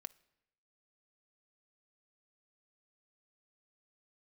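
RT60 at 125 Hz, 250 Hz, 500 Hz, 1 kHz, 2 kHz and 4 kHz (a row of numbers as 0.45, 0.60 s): 1.0, 0.95, 0.90, 0.85, 0.85, 0.70 s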